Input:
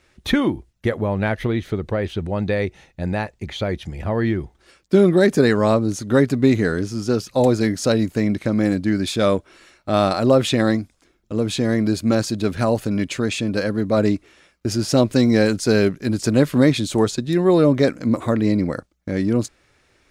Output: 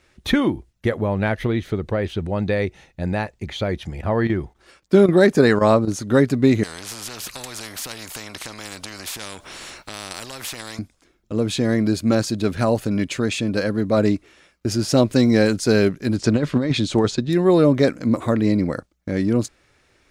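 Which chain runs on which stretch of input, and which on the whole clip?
3.77–6.05 s: peaking EQ 970 Hz +3.5 dB 1.8 oct + square tremolo 3.8 Hz, depth 65%, duty 90%
6.63–10.79 s: compression 2.5:1, threshold -26 dBFS + spectrum-flattening compressor 4:1
16.16–17.30 s: low-pass 5.8 kHz + compressor with a negative ratio -16 dBFS, ratio -0.5 + tape noise reduction on one side only decoder only
whole clip: none

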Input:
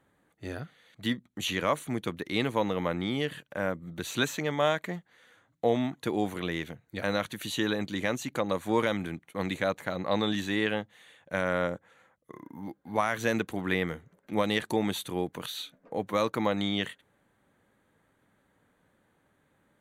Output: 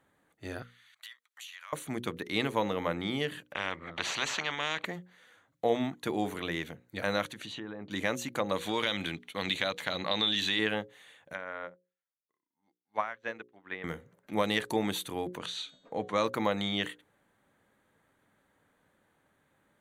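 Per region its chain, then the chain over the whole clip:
0.62–1.73 s: high-pass 1.1 kHz 24 dB/octave + compression 16:1, threshold -42 dBFS
3.53–4.85 s: resonant low-pass 2.2 kHz, resonance Q 1.5 + bass shelf 350 Hz -11.5 dB + spectrum-flattening compressor 4:1
7.26–7.91 s: low-pass that closes with the level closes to 1.4 kHz, closed at -27.5 dBFS + compression 2.5:1, threshold -39 dBFS
8.56–10.59 s: peaking EQ 3.5 kHz +14.5 dB 1.3 oct + compression 2.5:1, threshold -26 dBFS
11.33–13.84 s: low-pass that closes with the level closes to 1.9 kHz, closed at -27.5 dBFS + tilt EQ +3 dB/octave + upward expansion 2.5:1, over -51 dBFS
15.37–16.25 s: low-pass 8.1 kHz 24 dB/octave + de-hum 369.7 Hz, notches 23
whole clip: bass shelf 370 Hz -3.5 dB; hum notches 60/120/180/240/300/360/420/480/540 Hz

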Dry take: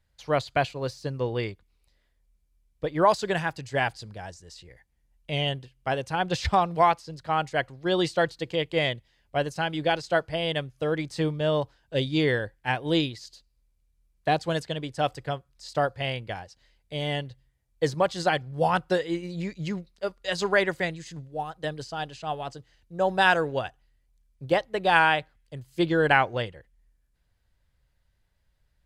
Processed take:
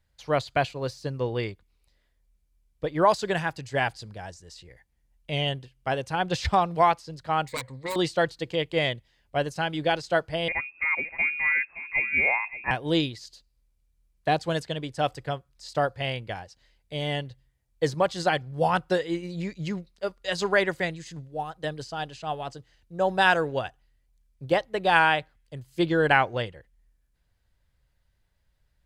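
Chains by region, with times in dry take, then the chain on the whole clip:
7.48–7.96 s: self-modulated delay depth 0.79 ms + rippled EQ curve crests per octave 0.99, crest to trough 12 dB + compression 4:1, threshold -28 dBFS
10.48–12.71 s: upward compressor, threshold -36 dBFS + delay 571 ms -13.5 dB + frequency inversion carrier 2.6 kHz
whole clip: none

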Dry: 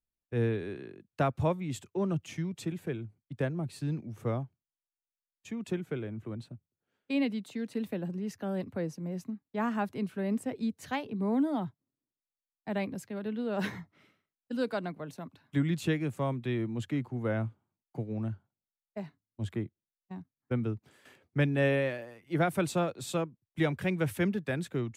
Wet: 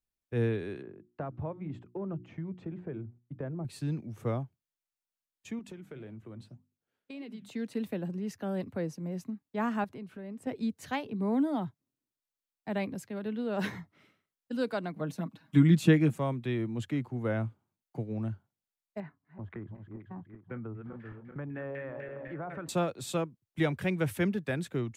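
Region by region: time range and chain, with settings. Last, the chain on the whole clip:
0.82–3.65 s: low-pass 1.3 kHz + hum notches 60/120/180/240/300/360 Hz + compression 5:1, threshold -33 dBFS
5.59–7.49 s: hum notches 50/100/150/200/250 Hz + compression 5:1, threshold -36 dBFS + flange 1.8 Hz, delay 1.8 ms, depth 9 ms, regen +86%
9.84–10.47 s: treble shelf 3.9 kHz -6.5 dB + compression 4:1, threshold -41 dBFS
14.95–16.18 s: peaking EQ 220 Hz +12 dB 0.44 oct + comb 6.3 ms, depth 93%
19.00–22.69 s: backward echo that repeats 193 ms, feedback 67%, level -11.5 dB + LFO low-pass saw down 4 Hz 890–2000 Hz + compression 4:1, threshold -38 dBFS
whole clip: none

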